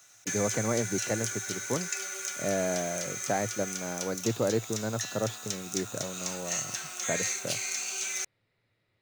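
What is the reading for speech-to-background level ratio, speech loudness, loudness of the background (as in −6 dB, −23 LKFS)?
−0.5 dB, −34.0 LKFS, −33.5 LKFS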